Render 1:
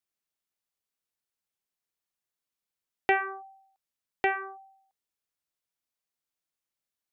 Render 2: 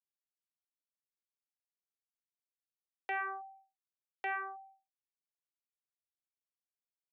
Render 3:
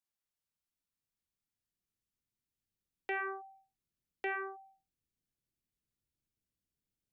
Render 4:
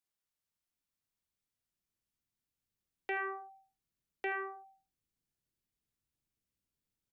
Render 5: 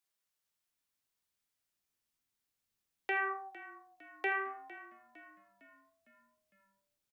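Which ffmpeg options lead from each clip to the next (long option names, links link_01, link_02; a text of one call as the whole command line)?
ffmpeg -i in.wav -af "highpass=frequency=460:width=0.5412,highpass=frequency=460:width=1.3066,anlmdn=0.000631,areverse,acompressor=threshold=-33dB:ratio=8,areverse,volume=-1dB" out.wav
ffmpeg -i in.wav -af "asubboost=boost=11.5:cutoff=250,volume=1.5dB" out.wav
ffmpeg -i in.wav -af "aecho=1:1:79:0.188" out.wav
ffmpeg -i in.wav -filter_complex "[0:a]lowshelf=frequency=320:gain=-8.5,flanger=delay=8.7:depth=7.5:regen=74:speed=0.37:shape=triangular,asplit=6[link_01][link_02][link_03][link_04][link_05][link_06];[link_02]adelay=456,afreqshift=-38,volume=-17dB[link_07];[link_03]adelay=912,afreqshift=-76,volume=-22.7dB[link_08];[link_04]adelay=1368,afreqshift=-114,volume=-28.4dB[link_09];[link_05]adelay=1824,afreqshift=-152,volume=-34dB[link_10];[link_06]adelay=2280,afreqshift=-190,volume=-39.7dB[link_11];[link_01][link_07][link_08][link_09][link_10][link_11]amix=inputs=6:normalize=0,volume=8.5dB" out.wav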